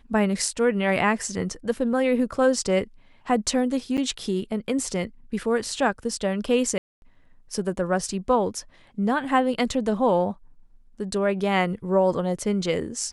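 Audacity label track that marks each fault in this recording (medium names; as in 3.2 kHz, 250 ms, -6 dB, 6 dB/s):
3.970000	3.980000	dropout 8.1 ms
6.780000	7.020000	dropout 241 ms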